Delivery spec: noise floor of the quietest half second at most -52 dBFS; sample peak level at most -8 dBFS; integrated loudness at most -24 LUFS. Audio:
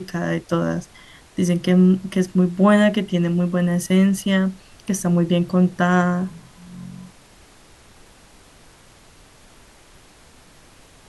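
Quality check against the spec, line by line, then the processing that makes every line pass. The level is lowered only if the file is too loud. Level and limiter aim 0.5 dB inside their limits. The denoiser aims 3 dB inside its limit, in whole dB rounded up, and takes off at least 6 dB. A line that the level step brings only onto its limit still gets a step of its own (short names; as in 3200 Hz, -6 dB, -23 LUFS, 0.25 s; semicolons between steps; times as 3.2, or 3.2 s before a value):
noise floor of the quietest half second -49 dBFS: fail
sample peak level -4.0 dBFS: fail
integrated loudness -19.5 LUFS: fail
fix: gain -5 dB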